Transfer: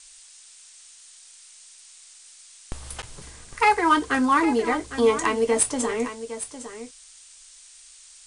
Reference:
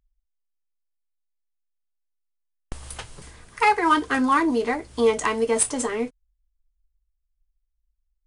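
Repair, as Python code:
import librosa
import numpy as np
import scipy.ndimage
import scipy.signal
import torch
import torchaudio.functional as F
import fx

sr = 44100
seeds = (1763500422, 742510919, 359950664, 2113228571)

y = fx.fix_interpolate(x, sr, at_s=(3.02,), length_ms=9.0)
y = fx.noise_reduce(y, sr, print_start_s=0.24, print_end_s=0.74, reduce_db=27.0)
y = fx.fix_echo_inverse(y, sr, delay_ms=807, level_db=-12.0)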